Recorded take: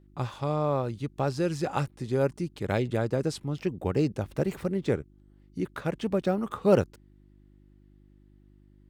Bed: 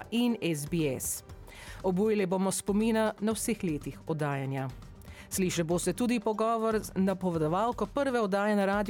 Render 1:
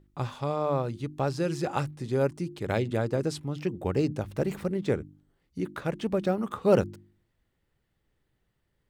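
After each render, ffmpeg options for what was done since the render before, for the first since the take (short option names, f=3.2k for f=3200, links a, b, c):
-af "bandreject=f=50:t=h:w=4,bandreject=f=100:t=h:w=4,bandreject=f=150:t=h:w=4,bandreject=f=200:t=h:w=4,bandreject=f=250:t=h:w=4,bandreject=f=300:t=h:w=4,bandreject=f=350:t=h:w=4"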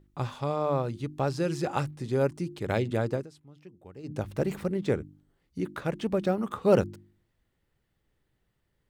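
-filter_complex "[0:a]asplit=3[a][b][c];[a]atrim=end=3.27,asetpts=PTS-STARTPTS,afade=t=out:st=3.12:d=0.15:silence=0.105925[d];[b]atrim=start=3.27:end=4.03,asetpts=PTS-STARTPTS,volume=-19.5dB[e];[c]atrim=start=4.03,asetpts=PTS-STARTPTS,afade=t=in:d=0.15:silence=0.105925[f];[d][e][f]concat=n=3:v=0:a=1"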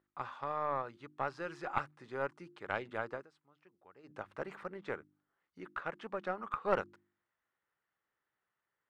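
-af "bandpass=f=1.3k:t=q:w=1.8:csg=0,aeval=exprs='0.211*(cos(1*acos(clip(val(0)/0.211,-1,1)))-cos(1*PI/2))+0.0944*(cos(2*acos(clip(val(0)/0.211,-1,1)))-cos(2*PI/2))':c=same"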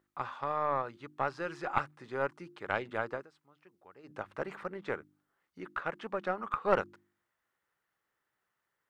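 -af "volume=4dB"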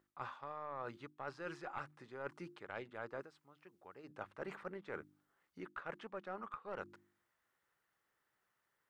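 -af "alimiter=limit=-19.5dB:level=0:latency=1:release=317,areverse,acompressor=threshold=-41dB:ratio=12,areverse"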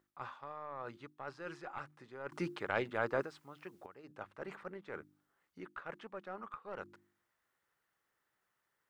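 -filter_complex "[0:a]asplit=3[a][b][c];[a]atrim=end=2.322[d];[b]atrim=start=2.318:end=3.862,asetpts=PTS-STARTPTS,volume=11.5dB[e];[c]atrim=start=3.858[f];[d][e]acrossfade=d=0.004:c1=hsin:c2=hsin[g];[g][f]acrossfade=d=0.004:c1=hsin:c2=hsin"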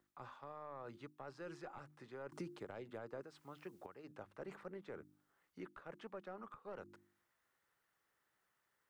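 -filter_complex "[0:a]acompressor=threshold=-42dB:ratio=6,acrossover=split=140|710|4800[a][b][c][d];[c]alimiter=level_in=22.5dB:limit=-24dB:level=0:latency=1:release=306,volume=-22.5dB[e];[a][b][e][d]amix=inputs=4:normalize=0"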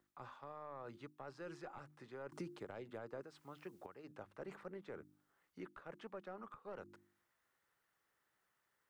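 -af anull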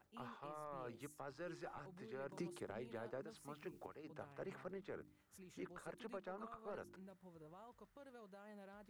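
-filter_complex "[1:a]volume=-31dB[a];[0:a][a]amix=inputs=2:normalize=0"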